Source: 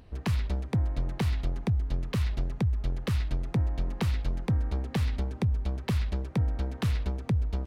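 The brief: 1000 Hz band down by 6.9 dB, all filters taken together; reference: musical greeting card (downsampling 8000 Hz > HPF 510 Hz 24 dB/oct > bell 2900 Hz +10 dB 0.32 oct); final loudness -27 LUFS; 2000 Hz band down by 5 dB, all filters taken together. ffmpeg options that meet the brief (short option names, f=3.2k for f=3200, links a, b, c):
-af "equalizer=f=1k:t=o:g=-7.5,equalizer=f=2k:t=o:g=-8,aresample=8000,aresample=44100,highpass=f=510:w=0.5412,highpass=f=510:w=1.3066,equalizer=f=2.9k:t=o:w=0.32:g=10,volume=19.5dB"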